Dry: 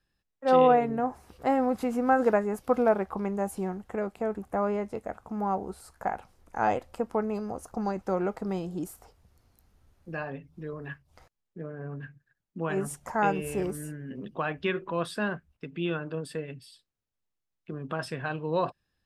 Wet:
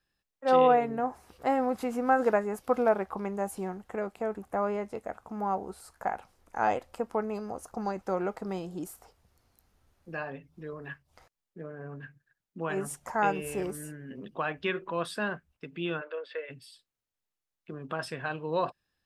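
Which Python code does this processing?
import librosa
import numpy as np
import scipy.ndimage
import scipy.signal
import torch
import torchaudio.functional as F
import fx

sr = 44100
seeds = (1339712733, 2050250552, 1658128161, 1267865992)

y = fx.cabinet(x, sr, low_hz=480.0, low_slope=24, high_hz=3700.0, hz=(530.0, 760.0, 1400.0, 2100.0, 3500.0), db=(8, -7, 4, 7, 3), at=(16.0, 16.49), fade=0.02)
y = fx.low_shelf(y, sr, hz=300.0, db=-6.5)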